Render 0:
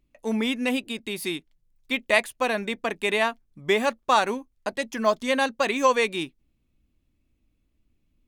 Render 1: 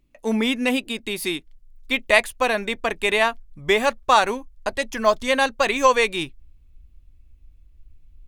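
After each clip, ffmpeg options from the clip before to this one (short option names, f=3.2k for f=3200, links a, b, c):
-af "asubboost=boost=10.5:cutoff=67,volume=4.5dB"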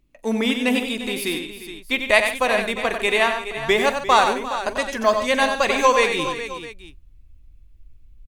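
-af "aecho=1:1:44|93|144|349|418|662:0.133|0.447|0.188|0.178|0.251|0.126"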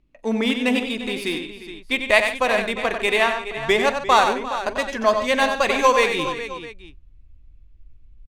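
-af "adynamicsmooth=sensitivity=3:basefreq=5.2k"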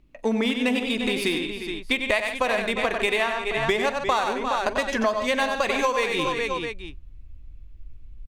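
-af "acompressor=threshold=-26dB:ratio=6,volume=5.5dB"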